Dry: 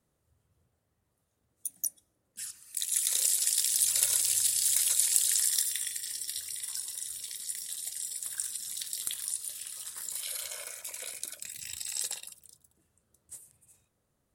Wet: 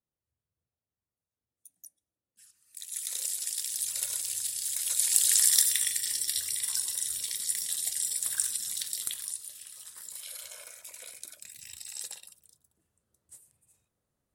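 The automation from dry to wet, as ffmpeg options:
-af "volume=2,afade=t=in:st=2.49:d=0.62:silence=0.251189,afade=t=in:st=4.79:d=0.75:silence=0.251189,afade=t=out:st=8.33:d=1.17:silence=0.266073"

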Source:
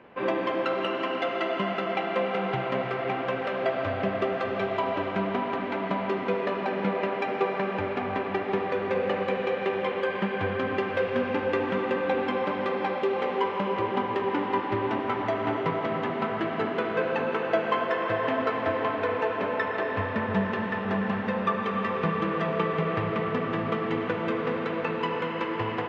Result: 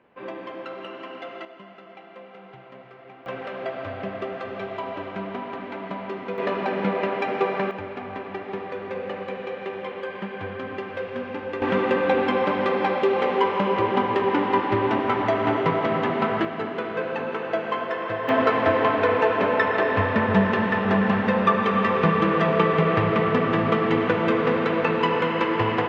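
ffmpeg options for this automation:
-af "asetnsamples=n=441:p=0,asendcmd='1.45 volume volume -17dB;3.26 volume volume -4dB;6.38 volume volume 3dB;7.71 volume volume -4.5dB;11.62 volume volume 5.5dB;16.45 volume volume -1dB;18.29 volume volume 7dB',volume=0.376"

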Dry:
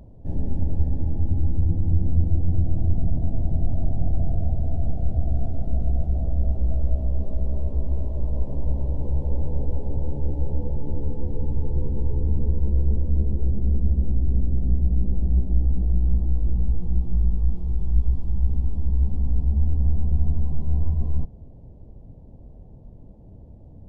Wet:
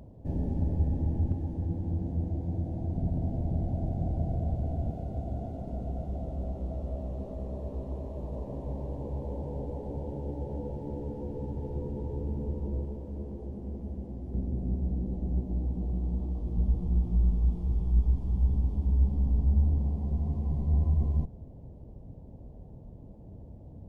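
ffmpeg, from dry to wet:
-af "asetnsamples=n=441:p=0,asendcmd='1.32 highpass f 270;2.96 highpass f 130;4.91 highpass f 250;12.85 highpass f 510;14.34 highpass f 190;16.57 highpass f 59;19.78 highpass f 160;20.46 highpass f 50',highpass=f=84:p=1"

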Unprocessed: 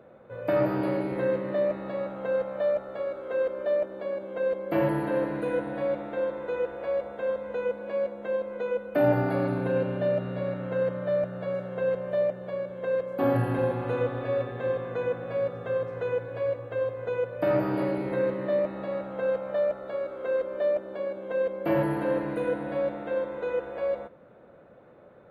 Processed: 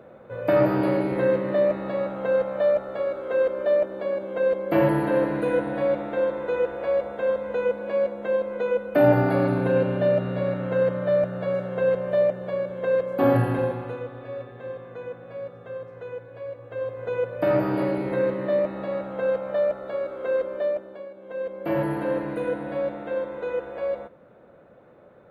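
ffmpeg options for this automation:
-af "volume=17.8,afade=t=out:st=13.33:d=0.67:silence=0.251189,afade=t=in:st=16.52:d=0.73:silence=0.316228,afade=t=out:st=20.44:d=0.66:silence=0.251189,afade=t=in:st=21.1:d=0.79:silence=0.316228"

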